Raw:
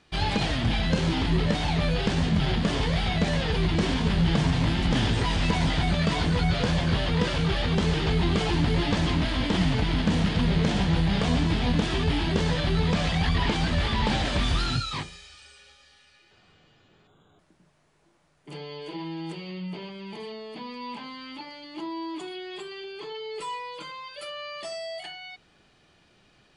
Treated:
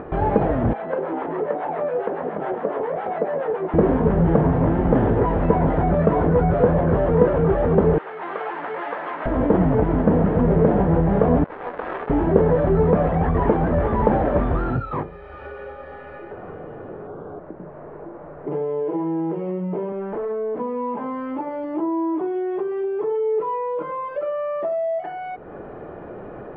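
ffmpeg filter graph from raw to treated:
-filter_complex "[0:a]asettb=1/sr,asplit=3[s0][s1][s2];[s0]atrim=end=0.734[s3];[s1]atrim=start=0.73:end=3.74,asetpts=PTS-STARTPTS,afade=t=in:d=0.004:c=qsin,afade=t=out:st=3.006:d=0.004:c=qsin,acrossover=split=690[s4][s5];[s4]aeval=exprs='val(0)*(1-0.7/2+0.7/2*cos(2*PI*7.2*n/s))':c=same[s6];[s5]aeval=exprs='val(0)*(1-0.7/2-0.7/2*cos(2*PI*7.2*n/s))':c=same[s7];[s6][s7]amix=inputs=2:normalize=0,highpass=460,lowpass=4500[s8];[s2]atrim=start=3.736[s9];[s3][s8]acrossfade=d=0.004:c1=hsin:c2=qsin[s10];[s10][s9]acrossfade=d=0.004:c1=qsin:c2=hsin,asettb=1/sr,asplit=3[s11][s12][s13];[s11]atrim=end=7.984[s14];[s12]atrim=start=7.98:end=9.26,asetpts=PTS-STARTPTS,afade=t=in:d=0.004:c=qsin,afade=t=out:st=1.276:d=0.004:c=qsin,highpass=1400,equalizer=f=6400:w=4.6:g=-14[s15];[s13]atrim=start=9.256[s16];[s14][s15]acrossfade=d=0.004:c1=hsin:c2=qsin[s17];[s17][s16]acrossfade=d=0.004:c1=qsin:c2=hsin,asettb=1/sr,asplit=3[s18][s19][s20];[s18]atrim=end=11.444[s21];[s19]atrim=start=11.44:end=12.1,asetpts=PTS-STARTPTS,afade=t=in:d=0.004:c=qsin,afade=t=out:st=0.656:d=0.004:c=qsin,highpass=1200,acrusher=bits=4:mix=0:aa=0.5[s22];[s20]atrim=start=12.096[s23];[s21][s22]acrossfade=d=0.004:c1=hsin:c2=qsin[s24];[s24][s23]acrossfade=d=0.004:c1=qsin:c2=hsin,asettb=1/sr,asplit=3[s25][s26][s27];[s25]atrim=end=19.924[s28];[s26]atrim=start=19.92:end=20.6,asetpts=PTS-STARTPTS,afade=t=in:d=0.004:c=qsin,afade=t=out:st=0.676:d=0.004:c=qsin,highpass=160,lowpass=4100,aeval=exprs='0.0119*(abs(mod(val(0)/0.0119+3,4)-2)-1)':c=same[s29];[s27]atrim=start=20.596[s30];[s28][s29]acrossfade=d=0.004:c1=hsin:c2=qsin[s31];[s31][s30]acrossfade=d=0.004:c1=qsin:c2=hsin,lowpass=f=1500:w=0.5412,lowpass=f=1500:w=1.3066,equalizer=f=480:w=0.93:g=13.5,acompressor=mode=upward:threshold=0.0794:ratio=2.5,volume=1.26"

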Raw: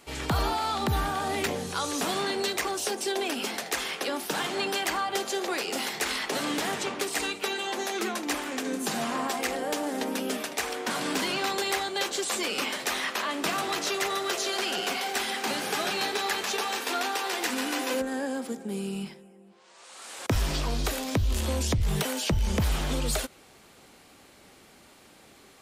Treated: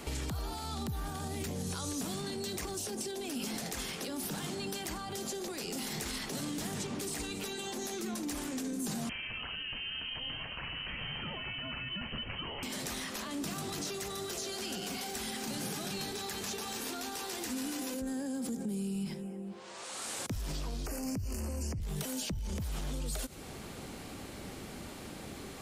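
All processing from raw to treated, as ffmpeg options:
-filter_complex "[0:a]asettb=1/sr,asplit=3[s0][s1][s2];[s0]atrim=end=9.094[s3];[s1]atrim=start=9.09:end=12.63,asetpts=PTS-STARTPTS,afade=t=in:d=0.004:c=qsin,afade=t=out:st=3.536:d=0.004:c=qsin,highpass=280,lowpass=f=2900:t=q:w=0.5098,lowpass=f=2900:t=q:w=0.6013,lowpass=f=2900:t=q:w=0.9,lowpass=f=2900:t=q:w=2.563,afreqshift=-3400[s4];[s2]atrim=start=12.626[s5];[s3][s4]acrossfade=d=0.004:c1=hsin:c2=qsin[s6];[s6][s5]acrossfade=d=0.004:c1=qsin:c2=hsin,asettb=1/sr,asplit=3[s7][s8][s9];[s7]atrim=end=20.864[s10];[s8]atrim=start=20.86:end=21.8,asetpts=PTS-STARTPTS,afade=t=in:d=0.004:c=qsin,afade=t=out:st=0.936:d=0.004:c=qsin,asuperstop=centerf=3600:order=8:qfactor=2.4,acrossover=split=100|1900[s11][s12][s13];[s11]acompressor=threshold=0.0112:ratio=4[s14];[s12]acompressor=threshold=0.0316:ratio=4[s15];[s13]acompressor=threshold=0.00891:ratio=4[s16];[s14][s15][s16]amix=inputs=3:normalize=0[s17];[s9]atrim=start=21.796[s18];[s10][s17]acrossfade=d=0.004:c1=hsin:c2=qsin[s19];[s19][s18]acrossfade=d=0.004:c1=qsin:c2=hsin,lowshelf=f=360:g=10.5,alimiter=level_in=1.58:limit=0.0631:level=0:latency=1:release=78,volume=0.631,acrossover=split=210|4700[s20][s21][s22];[s20]acompressor=threshold=0.00631:ratio=4[s23];[s21]acompressor=threshold=0.00316:ratio=4[s24];[s22]acompressor=threshold=0.00562:ratio=4[s25];[s23][s24][s25]amix=inputs=3:normalize=0,volume=2.11"

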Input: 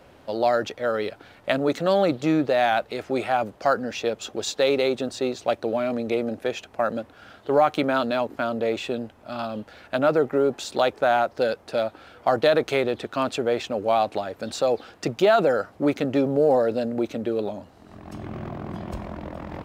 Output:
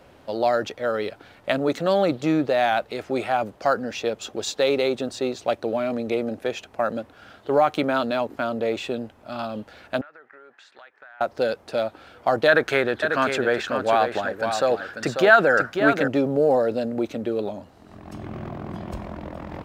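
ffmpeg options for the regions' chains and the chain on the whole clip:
-filter_complex "[0:a]asettb=1/sr,asplit=3[s0][s1][s2];[s0]atrim=end=10.014[s3];[s1]atrim=start=10.01:end=11.21,asetpts=PTS-STARTPTS,afade=t=in:d=0.004:c=qsin,afade=t=out:st=1.196:d=0.004:c=qsin,bandpass=f=1700:t=q:w=4.4,acompressor=threshold=0.00708:ratio=6:attack=3.2:release=140:knee=1:detection=peak[s4];[s2]atrim=start=11.206[s5];[s3][s4]acrossfade=d=0.004:c1=hsin:c2=qsin[s6];[s6][s5]acrossfade=d=0.004:c1=qsin:c2=hsin,asettb=1/sr,asplit=3[s7][s8][s9];[s7]atrim=end=12.484[s10];[s8]atrim=start=12.48:end=16.08,asetpts=PTS-STARTPTS,afade=t=in:d=0.004:c=qsin,afade=t=out:st=3.596:d=0.004:c=qsin,equalizer=f=1600:t=o:w=0.51:g=15,aecho=1:1:543:0.447,atrim=end_sample=158760[s11];[s9]atrim=start=16.076[s12];[s10][s11]acrossfade=d=0.004:c1=hsin:c2=qsin[s13];[s13][s12]acrossfade=d=0.004:c1=qsin:c2=hsin"

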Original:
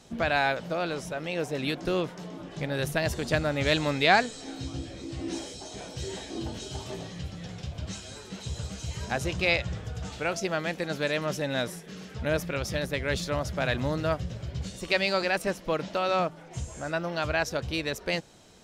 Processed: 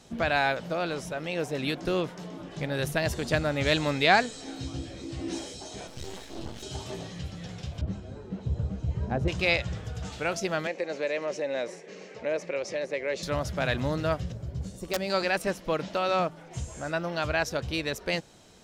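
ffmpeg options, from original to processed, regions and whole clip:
-filter_complex "[0:a]asettb=1/sr,asplit=3[s0][s1][s2];[s0]atrim=end=5.874[s3];[s1]atrim=start=5.87:end=6.63,asetpts=PTS-STARTPTS,afade=t=in:d=0.004:c=qsin,afade=t=out:st=0.756:d=0.004:c=qsin,highshelf=f=9900:g=-5,aeval=exprs='max(val(0),0)':c=same[s4];[s2]atrim=start=6.626[s5];[s3][s4]acrossfade=d=0.004:c1=hsin:c2=qsin[s6];[s6][s5]acrossfade=d=0.004:c1=qsin:c2=hsin,asettb=1/sr,asplit=3[s7][s8][s9];[s7]atrim=end=7.814[s10];[s8]atrim=start=7.81:end=9.28,asetpts=PTS-STARTPTS,afade=t=in:d=0.004:c=qsin,afade=t=out:st=1.466:d=0.004:c=qsin,lowpass=f=1100:p=1,tiltshelf=f=850:g=6[s11];[s9]atrim=start=9.276[s12];[s10][s11]acrossfade=d=0.004:c1=hsin:c2=qsin[s13];[s13][s12]acrossfade=d=0.004:c1=qsin:c2=hsin,asettb=1/sr,asplit=3[s14][s15][s16];[s14]atrim=end=10.674[s17];[s15]atrim=start=10.67:end=13.23,asetpts=PTS-STARTPTS,afade=t=in:d=0.004:c=qsin,afade=t=out:st=2.556:d=0.004:c=qsin,highpass=330,equalizer=f=380:t=q:w=4:g=5,equalizer=f=540:t=q:w=4:g=8,equalizer=f=1400:t=q:w=4:g=-7,equalizer=f=2200:t=q:w=4:g=5,equalizer=f=3400:t=q:w=4:g=-9,equalizer=f=5000:t=q:w=4:g=-4,lowpass=f=6900:w=0.5412,lowpass=f=6900:w=1.3066,acompressor=threshold=0.0251:ratio=1.5:attack=3.2:release=140:knee=1:detection=peak[s18];[s16]atrim=start=13.226[s19];[s17][s18]acrossfade=d=0.004:c1=hsin:c2=qsin[s20];[s20][s19]acrossfade=d=0.004:c1=qsin:c2=hsin,asettb=1/sr,asplit=3[s21][s22][s23];[s21]atrim=end=14.324[s24];[s22]atrim=start=14.32:end=15.1,asetpts=PTS-STARTPTS,afade=t=in:d=0.004:c=qsin,afade=t=out:st=0.776:d=0.004:c=qsin,equalizer=f=2900:w=0.5:g=-12.5,aeval=exprs='(mod(8.91*val(0)+1,2)-1)/8.91':c=same[s25];[s23]atrim=start=15.096[s26];[s24][s25]acrossfade=d=0.004:c1=hsin:c2=qsin[s27];[s27][s26]acrossfade=d=0.004:c1=qsin:c2=hsin"

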